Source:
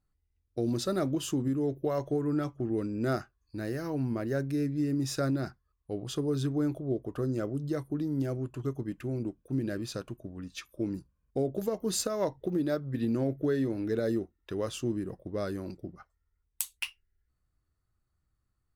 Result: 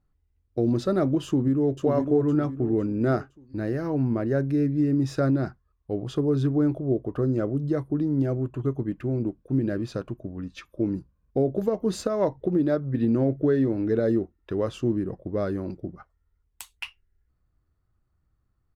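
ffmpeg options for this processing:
ffmpeg -i in.wav -filter_complex "[0:a]asplit=2[link_01][link_02];[link_02]afade=type=in:start_time=1.26:duration=0.01,afade=type=out:start_time=1.83:duration=0.01,aecho=0:1:510|1020|1530|2040|2550:0.562341|0.224937|0.0899746|0.0359898|0.0143959[link_03];[link_01][link_03]amix=inputs=2:normalize=0,asettb=1/sr,asplit=3[link_04][link_05][link_06];[link_04]atrim=end=8.404[link_07];[link_05]atrim=start=8.4:end=8.92,asetpts=PTS-STARTPTS,afade=type=in:duration=0.004:curve=qsin,afade=type=out:start_time=0.516:duration=0.004:curve=qsin,asuperstop=centerf=5200:order=4:qfactor=4.3[link_08];[link_06]atrim=start=8.916[link_09];[link_07][link_08]acrossfade=duration=0.004:curve1=hsin:curve2=qsin[link_10];[link_10][link_09]acrossfade=duration=0.004:curve1=qsin:curve2=hsin,lowpass=frequency=1300:poles=1,volume=7dB" out.wav

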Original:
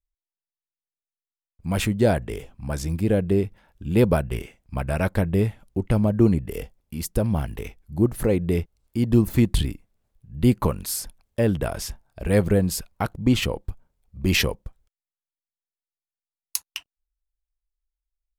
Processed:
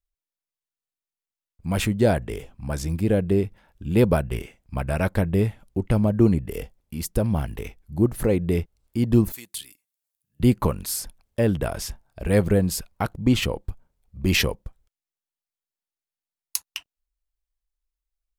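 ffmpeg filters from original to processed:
ffmpeg -i in.wav -filter_complex "[0:a]asettb=1/sr,asplit=3[link_01][link_02][link_03];[link_01]atrim=end=9.324[link_04];[link_02]atrim=start=9.32:end=10.4,asetpts=PTS-STARTPTS,afade=type=in:duration=0.004:curve=qsin,afade=type=out:start_time=1.076:duration=0.004:curve=qsin,aderivative[link_05];[link_03]atrim=start=10.396[link_06];[link_04][link_05]acrossfade=duration=0.004:curve1=hsin:curve2=qsin[link_07];[link_07][link_06]acrossfade=duration=0.004:curve1=qsin:curve2=hsin" out.wav

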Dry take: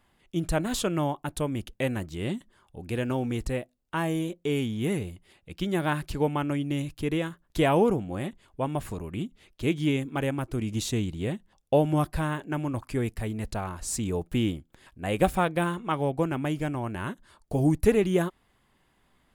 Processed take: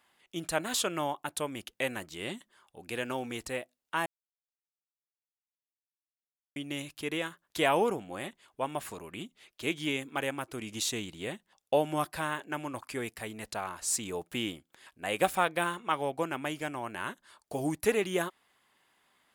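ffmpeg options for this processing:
ffmpeg -i in.wav -filter_complex "[0:a]asplit=3[link_01][link_02][link_03];[link_01]atrim=end=4.06,asetpts=PTS-STARTPTS,afade=type=out:start_time=4.056:duration=0.004:curve=hsin[link_04];[link_02]atrim=start=4.06:end=6.56,asetpts=PTS-STARTPTS,volume=0[link_05];[link_03]atrim=start=6.56,asetpts=PTS-STARTPTS,afade=type=in:duration=0.004:curve=hsin[link_06];[link_04][link_05][link_06]concat=n=3:v=0:a=1,highpass=frequency=940:poles=1,volume=2dB" out.wav

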